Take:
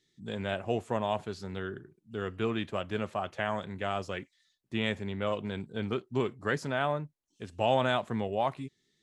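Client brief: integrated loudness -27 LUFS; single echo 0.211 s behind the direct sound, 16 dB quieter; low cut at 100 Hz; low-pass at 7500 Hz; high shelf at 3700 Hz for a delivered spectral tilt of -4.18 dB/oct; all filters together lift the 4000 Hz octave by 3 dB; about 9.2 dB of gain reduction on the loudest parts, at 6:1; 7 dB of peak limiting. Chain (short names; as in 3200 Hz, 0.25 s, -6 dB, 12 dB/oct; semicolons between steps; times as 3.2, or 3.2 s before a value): HPF 100 Hz; LPF 7500 Hz; high shelf 3700 Hz -5.5 dB; bell 4000 Hz +7.5 dB; compressor 6:1, threshold -31 dBFS; limiter -25.5 dBFS; echo 0.211 s -16 dB; gain +12 dB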